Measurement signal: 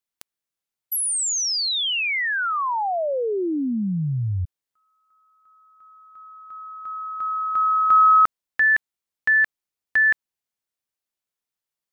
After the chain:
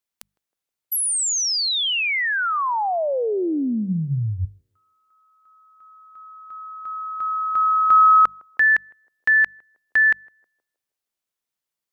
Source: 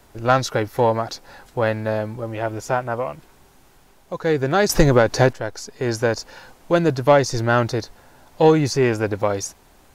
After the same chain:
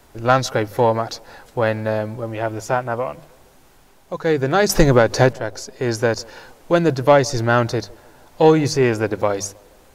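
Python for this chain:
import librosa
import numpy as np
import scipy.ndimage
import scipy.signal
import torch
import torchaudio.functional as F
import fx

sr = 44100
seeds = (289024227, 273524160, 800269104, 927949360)

y = fx.hum_notches(x, sr, base_hz=50, count=4)
y = fx.echo_banded(y, sr, ms=158, feedback_pct=52, hz=460.0, wet_db=-23.5)
y = y * librosa.db_to_amplitude(1.5)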